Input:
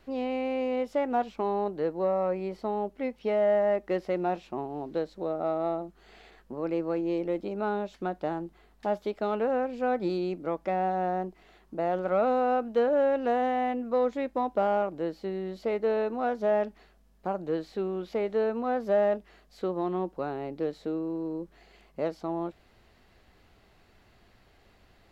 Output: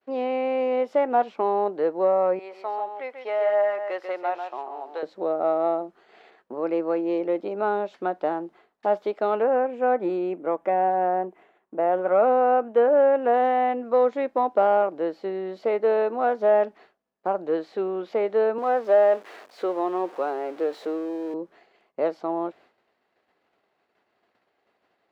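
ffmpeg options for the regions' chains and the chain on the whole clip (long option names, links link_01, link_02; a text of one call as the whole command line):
ffmpeg -i in.wav -filter_complex "[0:a]asettb=1/sr,asplit=3[link_01][link_02][link_03];[link_01]atrim=end=2.394[link_04];[link_02]atrim=start=2.39:end=5.03,asetpts=PTS-STARTPTS,afade=type=in:duration=0.004:curve=qsin,afade=type=out:start_time=2.636:duration=0.004:curve=qsin,highpass=770,aecho=1:1:141:0.447,atrim=end_sample=116424[link_05];[link_03]atrim=start=5.026[link_06];[link_04][link_05]acrossfade=duration=0.004:curve1=hsin:curve2=qsin[link_07];[link_07][link_06]acrossfade=duration=0.004:curve1=qsin:curve2=hsin,asettb=1/sr,asplit=3[link_08][link_09][link_10];[link_08]atrim=end=9.424[link_11];[link_09]atrim=start=9.42:end=13.34,asetpts=PTS-STARTPTS,afade=type=in:duration=0.004:curve=qsin,afade=type=out:start_time=3.916:duration=0.004:curve=qsin,equalizer=frequency=4600:width_type=o:width=0.71:gain=-14.5,bandreject=frequency=1300:width=28[link_12];[link_10]atrim=start=13.336[link_13];[link_11][link_12]acrossfade=duration=0.004:curve1=hsin:curve2=qsin[link_14];[link_14][link_13]acrossfade=duration=0.004:curve1=qsin:curve2=hsin,asettb=1/sr,asplit=3[link_15][link_16][link_17];[link_15]atrim=end=18.584[link_18];[link_16]atrim=start=18.58:end=21.34,asetpts=PTS-STARTPTS,afade=type=in:duration=0.004:curve=qsin,afade=type=out:start_time=2.756:duration=0.004:curve=qsin,aeval=exprs='val(0)+0.5*0.00668*sgn(val(0))':channel_layout=same,highpass=300[link_19];[link_17]atrim=start=21.336[link_20];[link_18][link_19]acrossfade=duration=0.004:curve1=hsin:curve2=qsin[link_21];[link_21][link_20]acrossfade=duration=0.004:curve1=qsin:curve2=hsin,lowpass=frequency=1600:poles=1,agate=range=-33dB:threshold=-51dB:ratio=3:detection=peak,highpass=390,volume=8dB" out.wav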